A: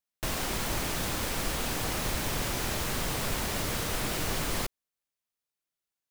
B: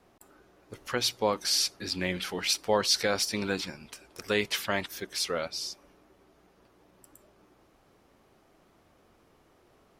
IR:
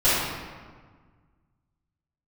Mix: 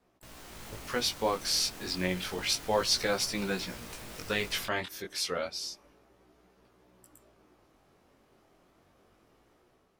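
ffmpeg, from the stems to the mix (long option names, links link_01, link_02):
-filter_complex "[0:a]alimiter=limit=-22.5dB:level=0:latency=1:release=19,volume=-16dB[link_01];[1:a]volume=-5dB[link_02];[link_01][link_02]amix=inputs=2:normalize=0,dynaudnorm=framelen=140:gausssize=7:maxgain=6dB,flanger=delay=15.5:depth=7.5:speed=0.3"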